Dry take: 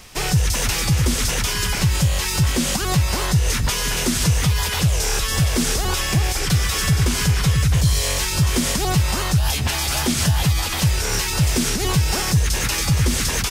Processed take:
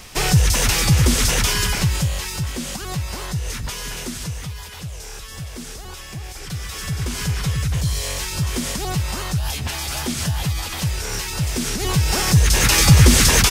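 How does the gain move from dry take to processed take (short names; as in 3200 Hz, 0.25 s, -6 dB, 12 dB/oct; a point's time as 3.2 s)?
1.51 s +3 dB
2.48 s -7.5 dB
3.91 s -7.5 dB
4.66 s -14 dB
6.17 s -14 dB
7.3 s -4.5 dB
11.52 s -4.5 dB
12.82 s +7.5 dB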